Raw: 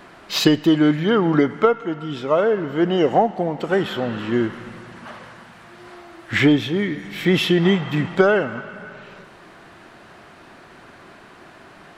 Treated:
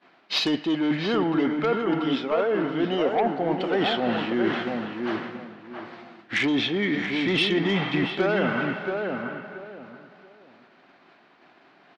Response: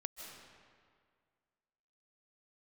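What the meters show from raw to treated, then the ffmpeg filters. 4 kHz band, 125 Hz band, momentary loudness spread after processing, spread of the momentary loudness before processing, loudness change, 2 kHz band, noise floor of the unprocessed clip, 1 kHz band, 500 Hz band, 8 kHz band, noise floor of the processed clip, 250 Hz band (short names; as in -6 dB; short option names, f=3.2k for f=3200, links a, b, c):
-1.5 dB, -8.5 dB, 15 LU, 19 LU, -5.5 dB, -2.5 dB, -46 dBFS, -4.0 dB, -5.5 dB, n/a, -57 dBFS, -5.0 dB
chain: -filter_complex "[0:a]highpass=190,equalizer=f=260:t=q:w=4:g=4,equalizer=f=760:t=q:w=4:g=4,equalizer=f=2.3k:t=q:w=4:g=3,lowpass=f=4.6k:w=0.5412,lowpass=f=4.6k:w=1.3066,aeval=exprs='0.891*(cos(1*acos(clip(val(0)/0.891,-1,1)))-cos(1*PI/2))+0.141*(cos(5*acos(clip(val(0)/0.891,-1,1)))-cos(5*PI/2))':c=same,agate=range=-33dB:threshold=-26dB:ratio=3:detection=peak,areverse,acompressor=threshold=-23dB:ratio=6,areverse,highshelf=f=3.3k:g=8,asplit=2[a][b];[b]adelay=679,lowpass=f=1.5k:p=1,volume=-4dB,asplit=2[c][d];[d]adelay=679,lowpass=f=1.5k:p=1,volume=0.25,asplit=2[e][f];[f]adelay=679,lowpass=f=1.5k:p=1,volume=0.25[g];[c][e][g]amix=inputs=3:normalize=0[h];[a][h]amix=inputs=2:normalize=0"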